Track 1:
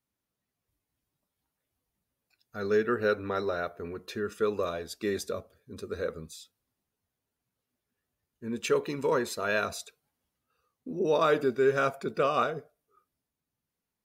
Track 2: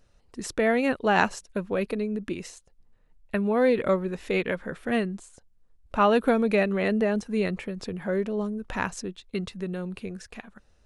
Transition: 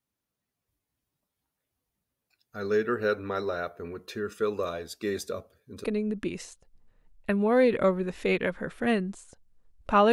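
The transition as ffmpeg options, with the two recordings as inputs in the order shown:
ffmpeg -i cue0.wav -i cue1.wav -filter_complex "[0:a]apad=whole_dur=10.12,atrim=end=10.12,atrim=end=5.842[link_01];[1:a]atrim=start=1.888:end=6.17[link_02];[link_01][link_02]acrossfade=duration=0.004:curve1=hsin:curve2=hsin" out.wav

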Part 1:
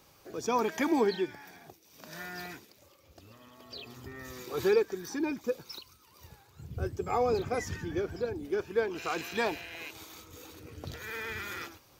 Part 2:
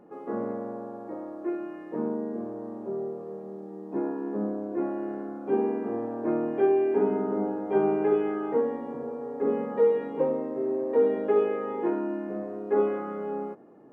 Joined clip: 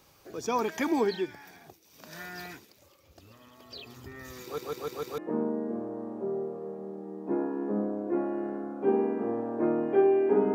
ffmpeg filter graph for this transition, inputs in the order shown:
ffmpeg -i cue0.wav -i cue1.wav -filter_complex "[0:a]apad=whole_dur=10.54,atrim=end=10.54,asplit=5[link_01][link_02][link_03][link_04][link_05];[link_01]atrim=end=4.582[link_06];[link_02]atrim=start=4.428:end=4.582[link_07];[link_03]atrim=start=4.428:end=4.582[link_08];[link_04]atrim=start=4.428:end=4.582[link_09];[link_05]atrim=start=4.428:end=4.582[link_10];[1:a]atrim=start=1.828:end=7.19[link_11];[link_06][link_07]acrossfade=duration=0.004:curve1=hsin:curve2=hsin[link_12];[link_12][link_08]acrossfade=duration=0.004:curve1=hsin:curve2=hsin[link_13];[link_13][link_09]acrossfade=duration=0.004:curve1=hsin:curve2=hsin[link_14];[link_14][link_10]acrossfade=duration=0.004:curve1=hsin:curve2=hsin[link_15];[link_15][link_11]acrossfade=duration=0.004:curve1=hsin:curve2=hsin" out.wav

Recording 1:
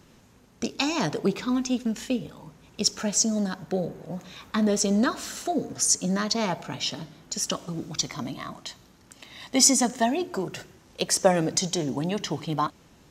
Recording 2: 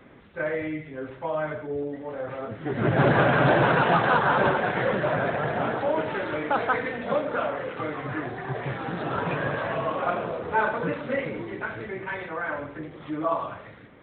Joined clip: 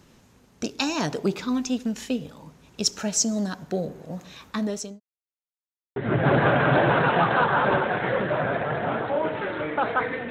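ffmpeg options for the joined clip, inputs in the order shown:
ffmpeg -i cue0.wav -i cue1.wav -filter_complex "[0:a]apad=whole_dur=10.3,atrim=end=10.3,asplit=2[link_01][link_02];[link_01]atrim=end=5,asetpts=PTS-STARTPTS,afade=type=out:start_time=4.17:duration=0.83:curve=qsin[link_03];[link_02]atrim=start=5:end=5.96,asetpts=PTS-STARTPTS,volume=0[link_04];[1:a]atrim=start=2.69:end=7.03,asetpts=PTS-STARTPTS,afade=type=in:duration=0.004:curve=hsin[link_05];[link_03][link_04][link_05]concat=n=3:v=0:a=1" out.wav

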